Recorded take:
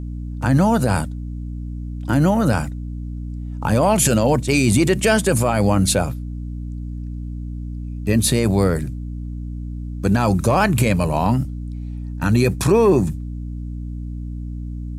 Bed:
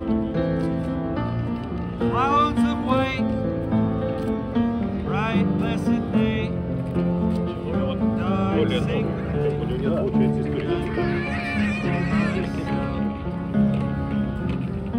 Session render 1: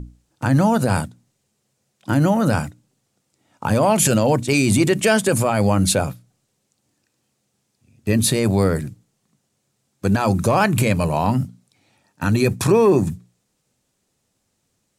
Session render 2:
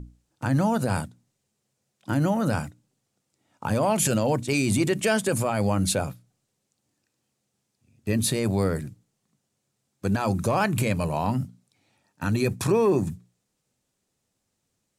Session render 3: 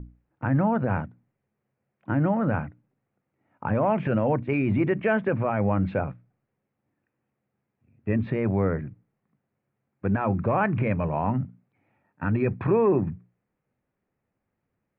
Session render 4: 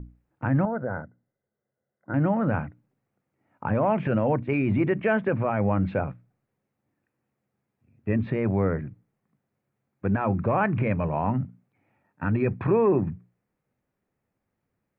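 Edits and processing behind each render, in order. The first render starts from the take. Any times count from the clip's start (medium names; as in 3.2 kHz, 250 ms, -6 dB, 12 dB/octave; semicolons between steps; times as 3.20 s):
hum notches 60/120/180/240/300 Hz
trim -6.5 dB
steep low-pass 2.3 kHz 36 dB/octave
0.65–2.14 s: rippled Chebyshev low-pass 2.1 kHz, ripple 9 dB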